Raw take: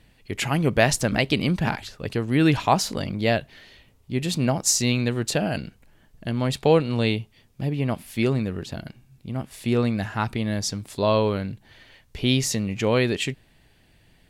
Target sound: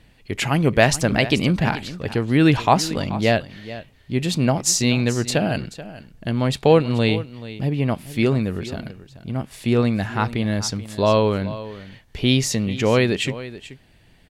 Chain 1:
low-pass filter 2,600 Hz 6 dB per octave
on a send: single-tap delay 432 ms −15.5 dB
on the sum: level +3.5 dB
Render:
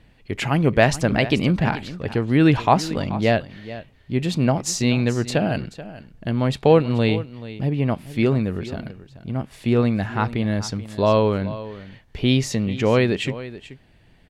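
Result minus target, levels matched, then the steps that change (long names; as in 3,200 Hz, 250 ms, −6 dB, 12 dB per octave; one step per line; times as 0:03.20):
8,000 Hz band −6.0 dB
change: low-pass filter 8,200 Hz 6 dB per octave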